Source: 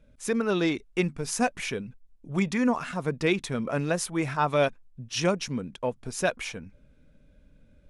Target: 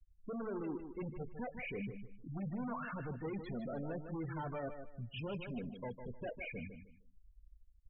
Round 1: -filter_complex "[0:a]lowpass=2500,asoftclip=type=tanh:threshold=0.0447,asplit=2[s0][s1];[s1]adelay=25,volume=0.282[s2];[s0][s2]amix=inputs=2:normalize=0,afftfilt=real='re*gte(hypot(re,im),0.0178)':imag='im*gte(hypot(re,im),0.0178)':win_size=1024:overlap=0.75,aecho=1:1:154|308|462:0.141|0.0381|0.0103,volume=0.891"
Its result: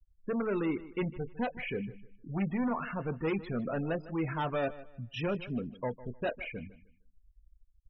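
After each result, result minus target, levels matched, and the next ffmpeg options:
echo-to-direct -8.5 dB; saturation: distortion -6 dB
-filter_complex "[0:a]lowpass=2500,asoftclip=type=tanh:threshold=0.0447,asplit=2[s0][s1];[s1]adelay=25,volume=0.282[s2];[s0][s2]amix=inputs=2:normalize=0,afftfilt=real='re*gte(hypot(re,im),0.0178)':imag='im*gte(hypot(re,im),0.0178)':win_size=1024:overlap=0.75,aecho=1:1:154|308|462:0.376|0.101|0.0274,volume=0.891"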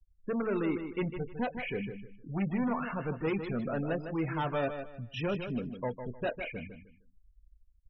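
saturation: distortion -6 dB
-filter_complex "[0:a]lowpass=2500,asoftclip=type=tanh:threshold=0.0119,asplit=2[s0][s1];[s1]adelay=25,volume=0.282[s2];[s0][s2]amix=inputs=2:normalize=0,afftfilt=real='re*gte(hypot(re,im),0.0178)':imag='im*gte(hypot(re,im),0.0178)':win_size=1024:overlap=0.75,aecho=1:1:154|308|462:0.376|0.101|0.0274,volume=0.891"

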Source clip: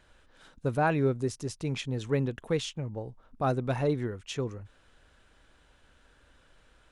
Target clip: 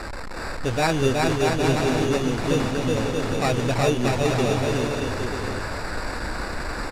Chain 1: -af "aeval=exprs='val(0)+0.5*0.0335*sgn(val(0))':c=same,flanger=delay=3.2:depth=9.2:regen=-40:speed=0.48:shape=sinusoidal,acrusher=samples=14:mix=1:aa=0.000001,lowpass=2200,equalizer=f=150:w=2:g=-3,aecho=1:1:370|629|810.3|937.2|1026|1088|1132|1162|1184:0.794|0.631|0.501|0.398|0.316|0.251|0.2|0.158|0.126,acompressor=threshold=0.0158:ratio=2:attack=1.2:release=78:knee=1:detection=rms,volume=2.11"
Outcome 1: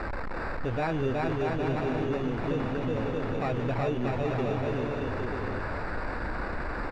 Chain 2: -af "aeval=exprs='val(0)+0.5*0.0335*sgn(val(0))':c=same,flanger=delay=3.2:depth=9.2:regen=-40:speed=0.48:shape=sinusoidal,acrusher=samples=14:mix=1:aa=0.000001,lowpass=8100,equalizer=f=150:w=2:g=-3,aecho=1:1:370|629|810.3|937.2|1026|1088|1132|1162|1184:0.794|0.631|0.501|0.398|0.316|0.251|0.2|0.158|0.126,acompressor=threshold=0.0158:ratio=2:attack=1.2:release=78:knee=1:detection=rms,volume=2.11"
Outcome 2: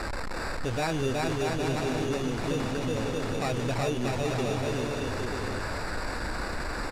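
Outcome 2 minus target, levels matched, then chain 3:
compression: peak gain reduction +9.5 dB
-af "aeval=exprs='val(0)+0.5*0.0335*sgn(val(0))':c=same,flanger=delay=3.2:depth=9.2:regen=-40:speed=0.48:shape=sinusoidal,acrusher=samples=14:mix=1:aa=0.000001,lowpass=8100,equalizer=f=150:w=2:g=-3,aecho=1:1:370|629|810.3|937.2|1026|1088|1132|1162|1184:0.794|0.631|0.501|0.398|0.316|0.251|0.2|0.158|0.126,volume=2.11"

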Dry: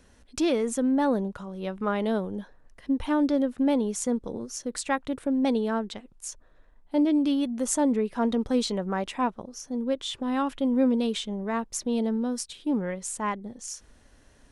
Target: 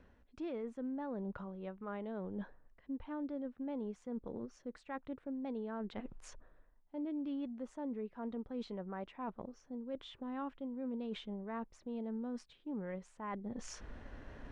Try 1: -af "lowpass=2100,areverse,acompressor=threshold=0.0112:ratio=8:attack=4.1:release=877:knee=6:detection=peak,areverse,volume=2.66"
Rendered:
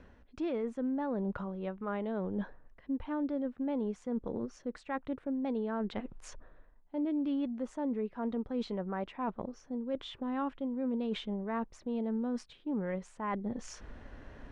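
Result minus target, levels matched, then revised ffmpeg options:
compression: peak gain reduction -7 dB
-af "lowpass=2100,areverse,acompressor=threshold=0.00447:ratio=8:attack=4.1:release=877:knee=6:detection=peak,areverse,volume=2.66"

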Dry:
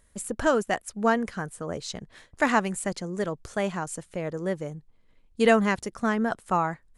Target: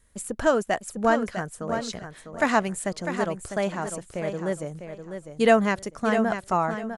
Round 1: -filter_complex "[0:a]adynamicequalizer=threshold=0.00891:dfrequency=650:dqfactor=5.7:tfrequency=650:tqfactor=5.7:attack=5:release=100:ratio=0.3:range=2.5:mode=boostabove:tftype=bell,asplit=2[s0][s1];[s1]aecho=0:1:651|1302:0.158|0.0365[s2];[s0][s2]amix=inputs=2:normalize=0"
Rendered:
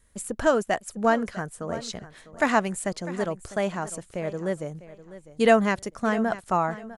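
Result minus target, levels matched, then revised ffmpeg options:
echo-to-direct -7.5 dB
-filter_complex "[0:a]adynamicequalizer=threshold=0.00891:dfrequency=650:dqfactor=5.7:tfrequency=650:tqfactor=5.7:attack=5:release=100:ratio=0.3:range=2.5:mode=boostabove:tftype=bell,asplit=2[s0][s1];[s1]aecho=0:1:651|1302|1953:0.376|0.0864|0.0199[s2];[s0][s2]amix=inputs=2:normalize=0"

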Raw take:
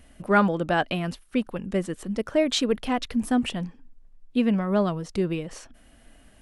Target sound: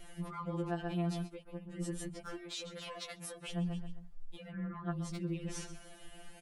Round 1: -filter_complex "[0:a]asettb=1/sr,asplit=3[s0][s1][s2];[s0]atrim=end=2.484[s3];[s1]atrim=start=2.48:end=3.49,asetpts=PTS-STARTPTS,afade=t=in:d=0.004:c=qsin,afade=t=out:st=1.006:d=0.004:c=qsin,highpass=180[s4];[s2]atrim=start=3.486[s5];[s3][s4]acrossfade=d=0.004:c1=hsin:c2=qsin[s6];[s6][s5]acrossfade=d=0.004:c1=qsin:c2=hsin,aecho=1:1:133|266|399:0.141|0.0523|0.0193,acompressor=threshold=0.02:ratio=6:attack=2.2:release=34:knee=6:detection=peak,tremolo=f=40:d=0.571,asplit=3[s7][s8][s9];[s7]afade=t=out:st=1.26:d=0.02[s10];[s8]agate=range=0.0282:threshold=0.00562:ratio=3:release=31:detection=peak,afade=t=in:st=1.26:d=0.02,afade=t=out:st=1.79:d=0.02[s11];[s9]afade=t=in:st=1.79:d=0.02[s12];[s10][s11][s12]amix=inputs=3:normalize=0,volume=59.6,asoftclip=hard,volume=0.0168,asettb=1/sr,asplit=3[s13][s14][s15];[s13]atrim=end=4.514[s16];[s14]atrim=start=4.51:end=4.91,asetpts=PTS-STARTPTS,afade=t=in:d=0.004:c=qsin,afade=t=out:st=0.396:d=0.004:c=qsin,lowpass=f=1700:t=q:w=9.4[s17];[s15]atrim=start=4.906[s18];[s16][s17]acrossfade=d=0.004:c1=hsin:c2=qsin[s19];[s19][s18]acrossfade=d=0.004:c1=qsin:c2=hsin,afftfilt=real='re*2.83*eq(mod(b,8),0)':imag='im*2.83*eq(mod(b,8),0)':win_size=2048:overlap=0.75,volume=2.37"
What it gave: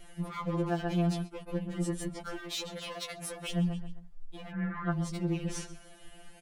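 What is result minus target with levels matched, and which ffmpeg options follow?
compression: peak gain reduction -7.5 dB
-filter_complex "[0:a]asettb=1/sr,asplit=3[s0][s1][s2];[s0]atrim=end=2.484[s3];[s1]atrim=start=2.48:end=3.49,asetpts=PTS-STARTPTS,afade=t=in:d=0.004:c=qsin,afade=t=out:st=1.006:d=0.004:c=qsin,highpass=180[s4];[s2]atrim=start=3.486[s5];[s3][s4]acrossfade=d=0.004:c1=hsin:c2=qsin[s6];[s6][s5]acrossfade=d=0.004:c1=qsin:c2=hsin,aecho=1:1:133|266|399:0.141|0.0523|0.0193,acompressor=threshold=0.00708:ratio=6:attack=2.2:release=34:knee=6:detection=peak,tremolo=f=40:d=0.571,asplit=3[s7][s8][s9];[s7]afade=t=out:st=1.26:d=0.02[s10];[s8]agate=range=0.0282:threshold=0.00562:ratio=3:release=31:detection=peak,afade=t=in:st=1.26:d=0.02,afade=t=out:st=1.79:d=0.02[s11];[s9]afade=t=in:st=1.79:d=0.02[s12];[s10][s11][s12]amix=inputs=3:normalize=0,volume=59.6,asoftclip=hard,volume=0.0168,asettb=1/sr,asplit=3[s13][s14][s15];[s13]atrim=end=4.514[s16];[s14]atrim=start=4.51:end=4.91,asetpts=PTS-STARTPTS,afade=t=in:d=0.004:c=qsin,afade=t=out:st=0.396:d=0.004:c=qsin,lowpass=f=1700:t=q:w=9.4[s17];[s15]atrim=start=4.906[s18];[s16][s17]acrossfade=d=0.004:c1=hsin:c2=qsin[s19];[s19][s18]acrossfade=d=0.004:c1=qsin:c2=hsin,afftfilt=real='re*2.83*eq(mod(b,8),0)':imag='im*2.83*eq(mod(b,8),0)':win_size=2048:overlap=0.75,volume=2.37"

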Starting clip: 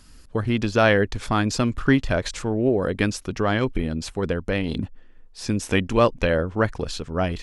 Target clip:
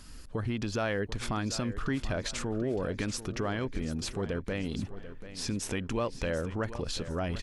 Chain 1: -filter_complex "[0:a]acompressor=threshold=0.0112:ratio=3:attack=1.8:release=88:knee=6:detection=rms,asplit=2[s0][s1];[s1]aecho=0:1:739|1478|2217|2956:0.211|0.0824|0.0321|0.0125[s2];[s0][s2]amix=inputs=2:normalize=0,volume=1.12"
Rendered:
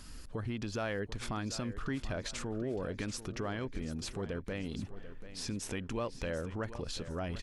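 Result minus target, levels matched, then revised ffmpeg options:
compression: peak gain reduction +5 dB
-filter_complex "[0:a]acompressor=threshold=0.0266:ratio=3:attack=1.8:release=88:knee=6:detection=rms,asplit=2[s0][s1];[s1]aecho=0:1:739|1478|2217|2956:0.211|0.0824|0.0321|0.0125[s2];[s0][s2]amix=inputs=2:normalize=0,volume=1.12"

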